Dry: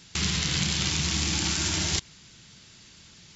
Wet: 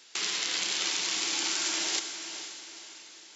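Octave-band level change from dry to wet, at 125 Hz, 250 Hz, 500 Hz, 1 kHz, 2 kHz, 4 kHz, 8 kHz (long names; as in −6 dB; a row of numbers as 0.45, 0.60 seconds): below −30 dB, −12.0 dB, −3.0 dB, −1.5 dB, −1.5 dB, −1.5 dB, can't be measured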